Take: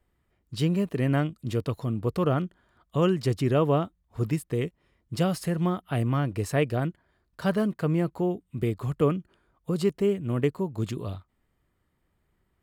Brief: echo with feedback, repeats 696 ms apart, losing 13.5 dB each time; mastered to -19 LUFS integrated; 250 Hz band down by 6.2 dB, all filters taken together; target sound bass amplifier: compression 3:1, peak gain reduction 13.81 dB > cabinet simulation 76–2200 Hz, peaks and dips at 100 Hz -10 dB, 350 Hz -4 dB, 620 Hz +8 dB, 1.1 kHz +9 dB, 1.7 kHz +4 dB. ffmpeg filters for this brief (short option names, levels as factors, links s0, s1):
-af "equalizer=f=250:t=o:g=-8.5,aecho=1:1:696|1392:0.211|0.0444,acompressor=threshold=0.0112:ratio=3,highpass=f=76:w=0.5412,highpass=f=76:w=1.3066,equalizer=f=100:t=q:w=4:g=-10,equalizer=f=350:t=q:w=4:g=-4,equalizer=f=620:t=q:w=4:g=8,equalizer=f=1100:t=q:w=4:g=9,equalizer=f=1700:t=q:w=4:g=4,lowpass=f=2200:w=0.5412,lowpass=f=2200:w=1.3066,volume=11.2"